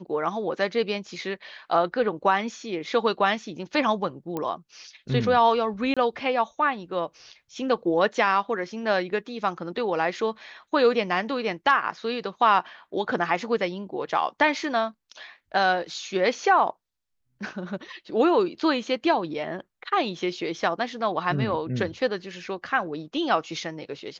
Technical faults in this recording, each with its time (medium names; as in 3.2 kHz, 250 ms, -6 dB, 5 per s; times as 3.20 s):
4.37 s: pop -17 dBFS
5.94–5.97 s: dropout 26 ms